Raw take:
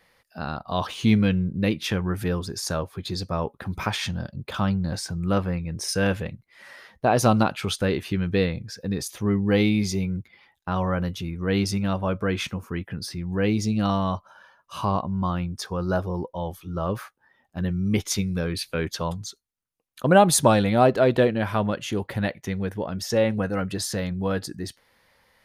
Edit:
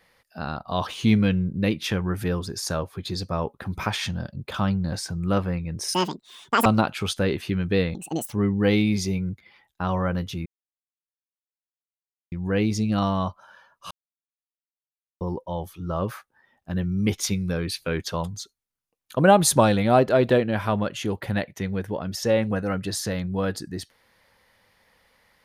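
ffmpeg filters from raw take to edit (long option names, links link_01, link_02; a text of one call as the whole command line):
ffmpeg -i in.wav -filter_complex "[0:a]asplit=9[link_01][link_02][link_03][link_04][link_05][link_06][link_07][link_08][link_09];[link_01]atrim=end=5.944[link_10];[link_02]atrim=start=5.94:end=7.28,asetpts=PTS-STARTPTS,asetrate=82467,aresample=44100,atrim=end_sample=31601,asetpts=PTS-STARTPTS[link_11];[link_03]atrim=start=7.276:end=8.574[link_12];[link_04]atrim=start=8.57:end=9.2,asetpts=PTS-STARTPTS,asetrate=72765,aresample=44100,atrim=end_sample=16838,asetpts=PTS-STARTPTS[link_13];[link_05]atrim=start=9.196:end=11.33,asetpts=PTS-STARTPTS,afade=type=out:start_time=2.13:duration=0.004:curve=hsin[link_14];[link_06]atrim=start=11.33:end=13.19,asetpts=PTS-STARTPTS,volume=0[link_15];[link_07]atrim=start=13.19:end=14.78,asetpts=PTS-STARTPTS,afade=type=in:duration=0.004:curve=hsin,afade=type=out:start_time=1.586:duration=0.004:curve=hsin[link_16];[link_08]atrim=start=14.78:end=16.08,asetpts=PTS-STARTPTS,volume=0[link_17];[link_09]atrim=start=16.08,asetpts=PTS-STARTPTS,afade=type=in:duration=0.004:curve=hsin[link_18];[link_10][link_11]acrossfade=duration=0.004:curve1=hsin:curve2=hsin[link_19];[link_19][link_12]acrossfade=duration=0.004:curve1=hsin:curve2=hsin[link_20];[link_20][link_13]acrossfade=duration=0.004:curve1=hsin:curve2=hsin[link_21];[link_14][link_15][link_16][link_17][link_18]concat=n=5:v=0:a=1[link_22];[link_21][link_22]acrossfade=duration=0.004:curve1=hsin:curve2=hsin" out.wav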